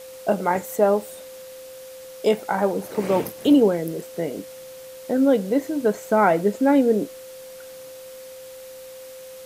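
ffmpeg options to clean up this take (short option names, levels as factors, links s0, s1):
-af "bandreject=f=520:w=30,afwtdn=0.005"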